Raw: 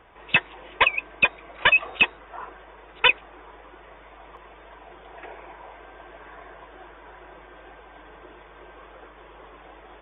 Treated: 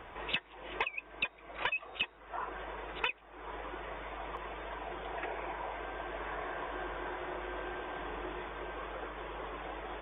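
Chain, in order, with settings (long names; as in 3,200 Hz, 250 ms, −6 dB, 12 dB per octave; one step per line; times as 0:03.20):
0:06.02–0:08.49: feedback delay that plays each chunk backwards 132 ms, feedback 73%, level −6 dB
downward compressor 6 to 1, threshold −39 dBFS, peak gain reduction 23.5 dB
level +4.5 dB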